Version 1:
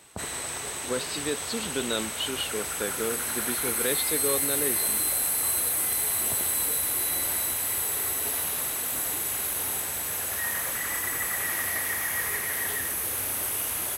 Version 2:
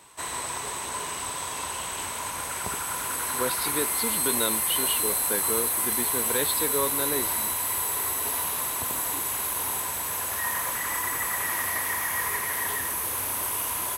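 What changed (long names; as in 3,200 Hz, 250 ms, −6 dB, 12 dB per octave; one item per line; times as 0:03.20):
speech: entry +2.50 s
master: add parametric band 1,000 Hz +14 dB 0.25 octaves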